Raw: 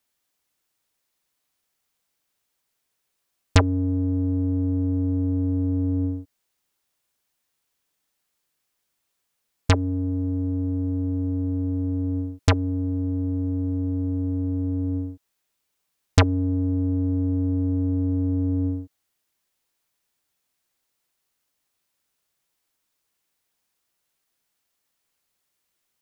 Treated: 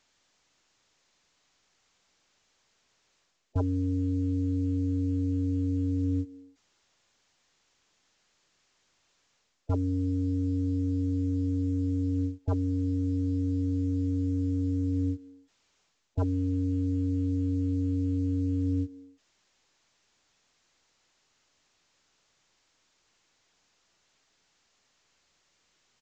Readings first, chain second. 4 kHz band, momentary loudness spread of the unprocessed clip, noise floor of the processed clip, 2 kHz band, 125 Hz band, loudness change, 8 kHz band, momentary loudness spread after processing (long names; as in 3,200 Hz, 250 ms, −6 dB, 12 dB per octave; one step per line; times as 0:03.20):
below −20 dB, 4 LU, −72 dBFS, below −20 dB, −5.0 dB, −5.0 dB, below −15 dB, 2 LU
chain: far-end echo of a speakerphone 310 ms, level −25 dB
reversed playback
downward compressor 12 to 1, threshold −33 dBFS, peak gain reduction 21.5 dB
reversed playback
gate on every frequency bin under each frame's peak −20 dB strong
level +7.5 dB
mu-law 128 kbit/s 16,000 Hz